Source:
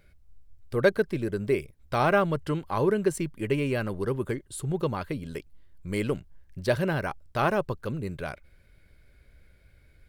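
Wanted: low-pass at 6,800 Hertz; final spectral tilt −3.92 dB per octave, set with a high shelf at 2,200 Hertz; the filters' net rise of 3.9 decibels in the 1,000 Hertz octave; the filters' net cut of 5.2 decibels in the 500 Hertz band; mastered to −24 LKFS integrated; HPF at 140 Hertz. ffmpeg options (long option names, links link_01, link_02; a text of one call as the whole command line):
ffmpeg -i in.wav -af "highpass=140,lowpass=6800,equalizer=frequency=500:width_type=o:gain=-9,equalizer=frequency=1000:width_type=o:gain=6.5,highshelf=frequency=2200:gain=5.5,volume=5.5dB" out.wav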